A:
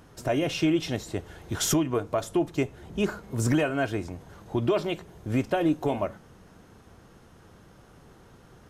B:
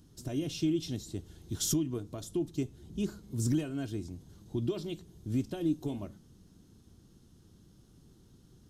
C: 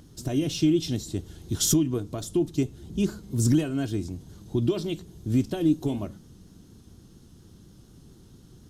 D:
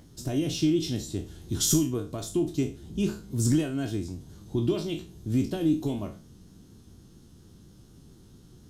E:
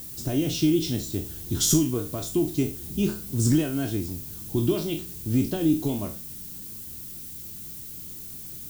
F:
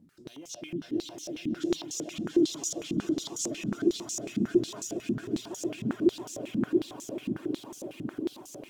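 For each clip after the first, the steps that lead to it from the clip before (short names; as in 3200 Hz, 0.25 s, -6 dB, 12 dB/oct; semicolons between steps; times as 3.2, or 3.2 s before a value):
band shelf 1100 Hz -15 dB 2.8 oct; gain -4.5 dB
vibrato 4.2 Hz 34 cents; gain +8 dB
spectral trails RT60 0.34 s; gain -2.5 dB
added noise violet -42 dBFS; gain +2.5 dB
swelling echo 0.137 s, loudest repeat 8, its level -4 dB; reverb removal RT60 0.74 s; stepped band-pass 11 Hz 220–6400 Hz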